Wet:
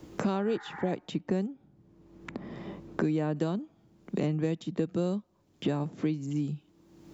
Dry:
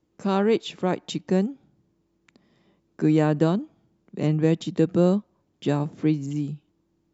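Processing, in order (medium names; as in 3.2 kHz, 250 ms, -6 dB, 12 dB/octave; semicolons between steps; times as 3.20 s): 0.49–0.90 s: spectral replace 750–2300 Hz; 1.47–3.36 s: treble shelf 2.8 kHz -11.5 dB; three bands compressed up and down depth 100%; trim -8 dB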